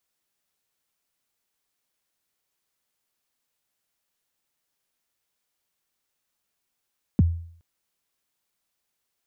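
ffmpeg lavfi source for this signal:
-f lavfi -i "aevalsrc='0.266*pow(10,-3*t/0.57)*sin(2*PI*(280*0.024/log(84/280)*(exp(log(84/280)*min(t,0.024)/0.024)-1)+84*max(t-0.024,0)))':d=0.42:s=44100"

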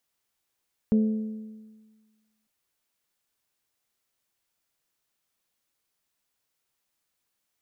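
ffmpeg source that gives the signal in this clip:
-f lavfi -i "aevalsrc='0.15*pow(10,-3*t/1.48)*sin(2*PI*217*t)+0.0398*pow(10,-3*t/1.202)*sin(2*PI*434*t)+0.0106*pow(10,-3*t/1.138)*sin(2*PI*520.8*t)+0.00282*pow(10,-3*t/1.064)*sin(2*PI*651*t)':d=1.55:s=44100"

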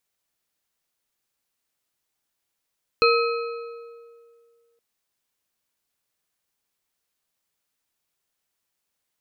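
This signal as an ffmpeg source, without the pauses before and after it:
-f lavfi -i "aevalsrc='0.158*pow(10,-3*t/2.14)*sin(2*PI*467*t)+0.126*pow(10,-3*t/1.579)*sin(2*PI*1287.5*t)+0.1*pow(10,-3*t/1.29)*sin(2*PI*2523.7*t)+0.0794*pow(10,-3*t/1.109)*sin(2*PI*4171.7*t)':d=1.77:s=44100"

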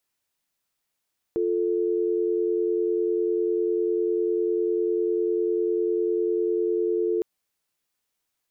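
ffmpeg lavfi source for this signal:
-f lavfi -i "aevalsrc='0.0631*(sin(2*PI*350*t)+sin(2*PI*440*t))':d=5.86:s=44100"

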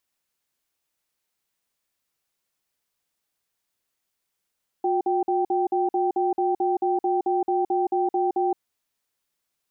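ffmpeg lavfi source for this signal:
-f lavfi -i "aevalsrc='0.075*(sin(2*PI*360*t)+sin(2*PI*780*t))*clip(min(mod(t,0.22),0.17-mod(t,0.22))/0.005,0,1)':d=3.73:s=44100"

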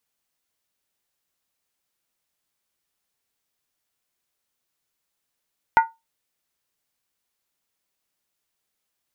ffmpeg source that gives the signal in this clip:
-f lavfi -i "aevalsrc='0.398*pow(10,-3*t/0.21)*sin(2*PI*907*t)+0.178*pow(10,-3*t/0.166)*sin(2*PI*1445.8*t)+0.0794*pow(10,-3*t/0.144)*sin(2*PI*1937.4*t)+0.0355*pow(10,-3*t/0.139)*sin(2*PI*2082.5*t)+0.0158*pow(10,-3*t/0.129)*sin(2*PI*2406.3*t)':d=0.63:s=44100"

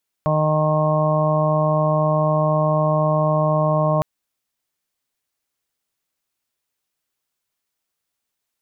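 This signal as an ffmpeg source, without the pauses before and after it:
-f lavfi -i "aevalsrc='0.112*sin(2*PI*154*t)+0.0316*sin(2*PI*308*t)+0.0237*sin(2*PI*462*t)+0.112*sin(2*PI*616*t)+0.0355*sin(2*PI*770*t)+0.0335*sin(2*PI*924*t)+0.0631*sin(2*PI*1078*t)':d=3.76:s=44100"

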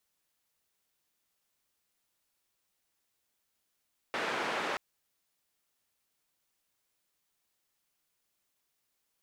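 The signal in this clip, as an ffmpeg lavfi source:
-f lavfi -i "anoisesrc=c=white:d=0.63:r=44100:seed=1,highpass=f=270,lowpass=f=1800,volume=-18.1dB"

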